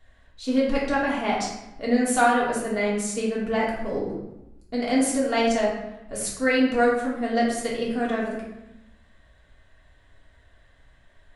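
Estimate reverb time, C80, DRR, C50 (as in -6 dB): 0.90 s, 5.0 dB, -6.0 dB, 2.0 dB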